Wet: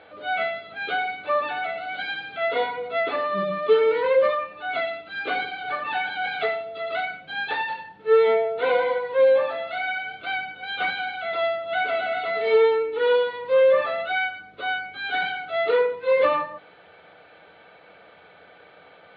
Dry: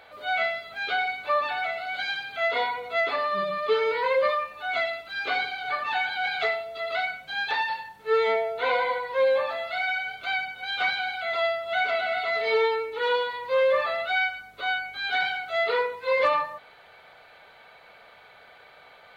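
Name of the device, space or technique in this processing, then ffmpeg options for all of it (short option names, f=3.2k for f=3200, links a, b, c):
guitar cabinet: -af "highpass=80,equalizer=f=80:t=q:w=4:g=7,equalizer=f=180:t=q:w=4:g=9,equalizer=f=310:t=q:w=4:g=10,equalizer=f=480:t=q:w=4:g=5,equalizer=f=1k:t=q:w=4:g=-4,equalizer=f=2.1k:t=q:w=4:g=-4,lowpass=f=3.5k:w=0.5412,lowpass=f=3.5k:w=1.3066,volume=1.5dB"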